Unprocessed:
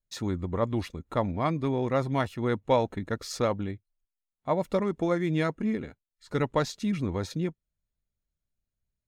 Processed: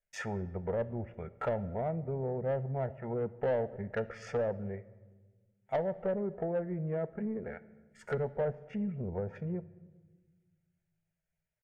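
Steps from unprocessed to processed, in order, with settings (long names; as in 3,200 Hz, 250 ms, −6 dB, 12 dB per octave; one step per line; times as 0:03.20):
treble cut that deepens with the level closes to 370 Hz, closed at −25 dBFS
dynamic equaliser 1,400 Hz, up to +3 dB, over −50 dBFS, Q 0.98
tempo change 0.78×
phaser with its sweep stopped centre 1,100 Hz, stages 6
mid-hump overdrive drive 18 dB, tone 2,200 Hz, clips at −19 dBFS
on a send: convolution reverb RT60 1.4 s, pre-delay 5 ms, DRR 15 dB
on the sum: level −2.5 dB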